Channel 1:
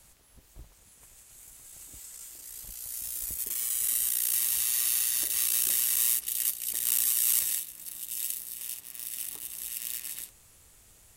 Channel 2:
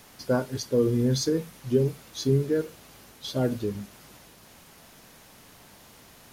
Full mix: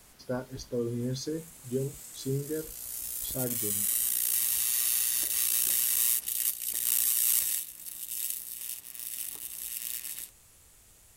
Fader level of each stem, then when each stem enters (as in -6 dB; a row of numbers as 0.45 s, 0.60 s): -0.5 dB, -9.0 dB; 0.00 s, 0.00 s